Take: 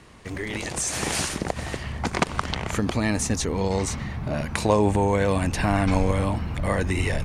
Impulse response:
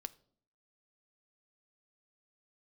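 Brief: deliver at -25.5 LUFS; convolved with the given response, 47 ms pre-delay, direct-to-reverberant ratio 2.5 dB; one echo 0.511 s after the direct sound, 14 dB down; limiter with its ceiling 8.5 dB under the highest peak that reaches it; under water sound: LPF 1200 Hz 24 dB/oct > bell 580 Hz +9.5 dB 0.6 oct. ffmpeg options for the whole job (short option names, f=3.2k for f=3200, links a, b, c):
-filter_complex "[0:a]alimiter=limit=-13.5dB:level=0:latency=1,aecho=1:1:511:0.2,asplit=2[a][b];[1:a]atrim=start_sample=2205,adelay=47[c];[b][c]afir=irnorm=-1:irlink=0,volume=1dB[d];[a][d]amix=inputs=2:normalize=0,lowpass=f=1.2k:w=0.5412,lowpass=f=1.2k:w=1.3066,equalizer=f=580:t=o:w=0.6:g=9.5,volume=-2dB"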